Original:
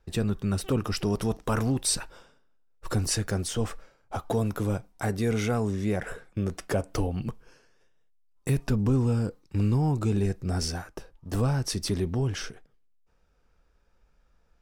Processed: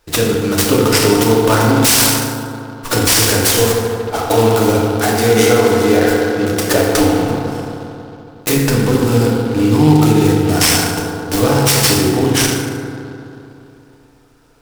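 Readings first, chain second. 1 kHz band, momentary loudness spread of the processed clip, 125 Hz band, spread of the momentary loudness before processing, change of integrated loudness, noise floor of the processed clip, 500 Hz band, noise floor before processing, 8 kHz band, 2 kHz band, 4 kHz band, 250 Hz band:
+19.0 dB, 12 LU, +10.5 dB, 10 LU, +15.5 dB, -45 dBFS, +18.5 dB, -66 dBFS, +18.5 dB, +20.0 dB, +19.5 dB, +15.5 dB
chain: tone controls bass -10 dB, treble +11 dB; FDN reverb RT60 3 s, high-frequency decay 0.3×, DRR -5 dB; loudness maximiser +12 dB; delay time shaken by noise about 2.9 kHz, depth 0.031 ms

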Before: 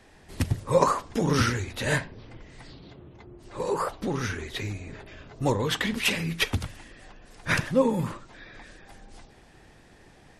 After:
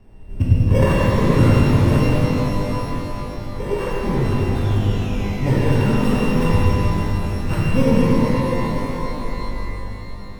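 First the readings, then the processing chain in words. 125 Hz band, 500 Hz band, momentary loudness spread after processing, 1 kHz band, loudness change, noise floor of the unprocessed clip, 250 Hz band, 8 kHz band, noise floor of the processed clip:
+14.5 dB, +7.0 dB, 13 LU, +5.5 dB, +8.0 dB, -54 dBFS, +12.5 dB, -2.0 dB, -32 dBFS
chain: sorted samples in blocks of 16 samples; painted sound fall, 4.55–6.31 s, 1–3.7 kHz -38 dBFS; tilt EQ -4 dB/octave; pitch-shifted reverb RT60 4 s, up +12 st, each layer -8 dB, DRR -7.5 dB; trim -5.5 dB

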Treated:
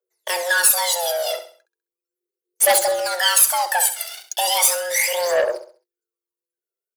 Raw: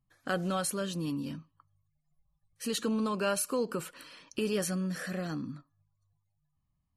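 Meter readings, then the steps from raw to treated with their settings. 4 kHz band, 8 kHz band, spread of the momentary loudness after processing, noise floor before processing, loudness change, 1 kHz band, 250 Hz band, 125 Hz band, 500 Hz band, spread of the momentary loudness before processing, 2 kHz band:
+19.0 dB, +21.0 dB, 12 LU, -79 dBFS, +15.5 dB, +16.5 dB, -16.0 dB, under -20 dB, +12.5 dB, 12 LU, +18.5 dB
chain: pre-emphasis filter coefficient 0.8; waveshaping leveller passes 5; frequency shift +350 Hz; phaser 0.37 Hz, delay 1.5 ms, feedback 76%; feedback delay 66 ms, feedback 36%, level -11 dB; transformer saturation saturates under 1.9 kHz; trim +6 dB

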